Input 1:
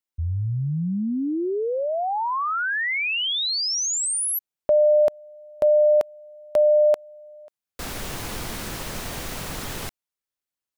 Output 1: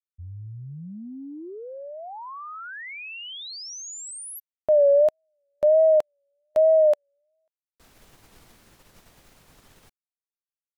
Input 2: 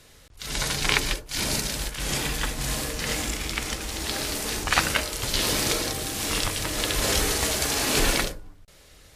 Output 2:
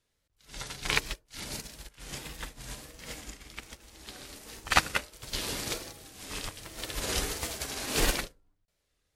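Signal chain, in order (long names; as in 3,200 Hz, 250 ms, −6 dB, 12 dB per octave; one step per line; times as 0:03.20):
tape wow and flutter 1.4 Hz 110 cents
expander for the loud parts 2.5 to 1, over −35 dBFS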